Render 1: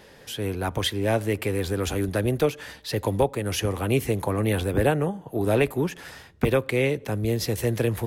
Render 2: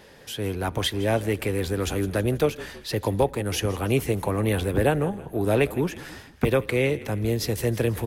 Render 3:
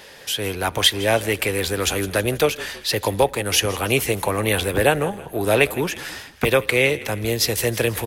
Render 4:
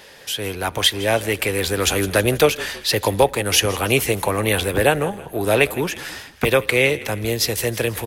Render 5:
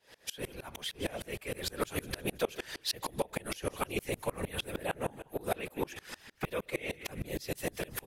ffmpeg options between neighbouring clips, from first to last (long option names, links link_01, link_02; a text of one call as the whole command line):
ffmpeg -i in.wav -filter_complex "[0:a]asplit=5[link_01][link_02][link_03][link_04][link_05];[link_02]adelay=162,afreqshift=-39,volume=-18dB[link_06];[link_03]adelay=324,afreqshift=-78,volume=-23.7dB[link_07];[link_04]adelay=486,afreqshift=-117,volume=-29.4dB[link_08];[link_05]adelay=648,afreqshift=-156,volume=-35dB[link_09];[link_01][link_06][link_07][link_08][link_09]amix=inputs=5:normalize=0" out.wav
ffmpeg -i in.wav -af "firequalizer=gain_entry='entry(240,0);entry(530,6);entry(2600,12)':delay=0.05:min_phase=1,volume=-1dB" out.wav
ffmpeg -i in.wav -af "dynaudnorm=framelen=110:gausssize=17:maxgain=11.5dB,volume=-1dB" out.wav
ffmpeg -i in.wav -af "alimiter=limit=-11.5dB:level=0:latency=1:release=145,afftfilt=real='hypot(re,im)*cos(2*PI*random(0))':imag='hypot(re,im)*sin(2*PI*random(1))':win_size=512:overlap=0.75,aeval=exprs='val(0)*pow(10,-28*if(lt(mod(-6.5*n/s,1),2*abs(-6.5)/1000),1-mod(-6.5*n/s,1)/(2*abs(-6.5)/1000),(mod(-6.5*n/s,1)-2*abs(-6.5)/1000)/(1-2*abs(-6.5)/1000))/20)':channel_layout=same" out.wav